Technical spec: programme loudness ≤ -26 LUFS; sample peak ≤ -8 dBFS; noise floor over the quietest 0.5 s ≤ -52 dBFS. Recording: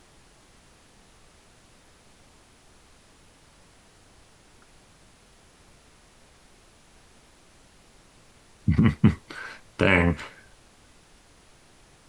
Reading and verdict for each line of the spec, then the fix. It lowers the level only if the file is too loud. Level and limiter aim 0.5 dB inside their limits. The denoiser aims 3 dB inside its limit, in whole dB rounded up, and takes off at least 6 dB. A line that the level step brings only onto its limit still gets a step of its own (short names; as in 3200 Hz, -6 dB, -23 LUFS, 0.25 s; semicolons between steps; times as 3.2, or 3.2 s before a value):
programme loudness -24.0 LUFS: fail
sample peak -5.0 dBFS: fail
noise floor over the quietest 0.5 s -56 dBFS: OK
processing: gain -2.5 dB; limiter -8.5 dBFS